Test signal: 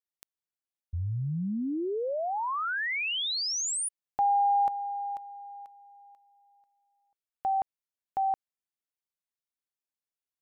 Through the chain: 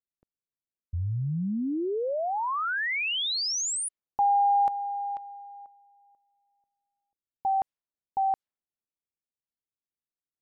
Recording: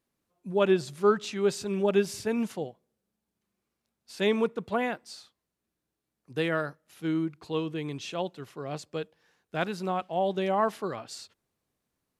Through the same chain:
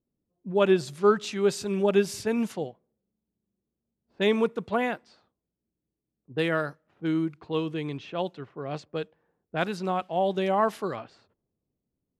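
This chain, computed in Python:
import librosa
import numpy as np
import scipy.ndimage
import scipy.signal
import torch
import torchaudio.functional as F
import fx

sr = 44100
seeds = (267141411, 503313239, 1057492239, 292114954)

y = fx.env_lowpass(x, sr, base_hz=390.0, full_db=-27.5)
y = F.gain(torch.from_numpy(y), 2.0).numpy()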